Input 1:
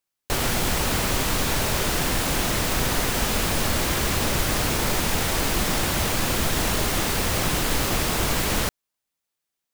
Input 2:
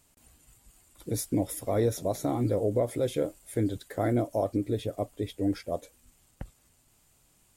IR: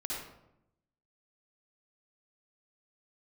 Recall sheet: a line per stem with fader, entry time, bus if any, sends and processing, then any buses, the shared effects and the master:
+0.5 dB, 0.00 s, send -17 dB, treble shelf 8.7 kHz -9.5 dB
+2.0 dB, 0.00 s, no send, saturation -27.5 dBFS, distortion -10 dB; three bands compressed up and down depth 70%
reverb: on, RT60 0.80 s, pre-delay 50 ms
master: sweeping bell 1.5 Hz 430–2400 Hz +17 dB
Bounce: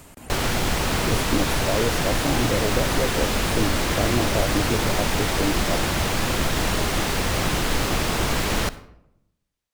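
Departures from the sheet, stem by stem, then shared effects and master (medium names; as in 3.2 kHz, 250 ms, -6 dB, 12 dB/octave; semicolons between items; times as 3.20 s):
stem 2: missing saturation -27.5 dBFS, distortion -10 dB; master: missing sweeping bell 1.5 Hz 430–2400 Hz +17 dB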